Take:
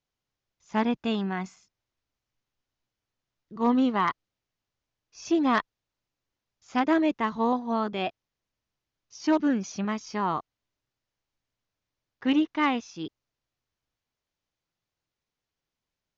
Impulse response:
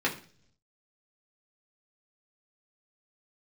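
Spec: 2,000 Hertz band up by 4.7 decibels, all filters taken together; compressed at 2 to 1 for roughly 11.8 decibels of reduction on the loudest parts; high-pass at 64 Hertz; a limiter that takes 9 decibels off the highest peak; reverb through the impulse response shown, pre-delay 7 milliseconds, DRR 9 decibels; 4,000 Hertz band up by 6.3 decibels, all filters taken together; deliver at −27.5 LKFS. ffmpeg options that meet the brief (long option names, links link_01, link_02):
-filter_complex "[0:a]highpass=64,equalizer=frequency=2000:width_type=o:gain=4,equalizer=frequency=4000:width_type=o:gain=7,acompressor=threshold=-41dB:ratio=2,alimiter=level_in=5.5dB:limit=-24dB:level=0:latency=1,volume=-5.5dB,asplit=2[link_01][link_02];[1:a]atrim=start_sample=2205,adelay=7[link_03];[link_02][link_03]afir=irnorm=-1:irlink=0,volume=-19.5dB[link_04];[link_01][link_04]amix=inputs=2:normalize=0,volume=12dB"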